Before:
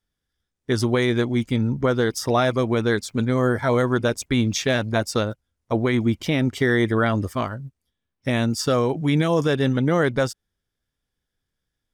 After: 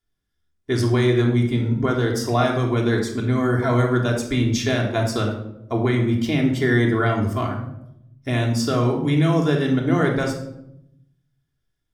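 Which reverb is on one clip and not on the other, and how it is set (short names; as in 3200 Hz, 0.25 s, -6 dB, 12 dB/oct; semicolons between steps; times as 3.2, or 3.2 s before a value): shoebox room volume 2000 m³, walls furnished, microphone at 3.2 m; gain -3.5 dB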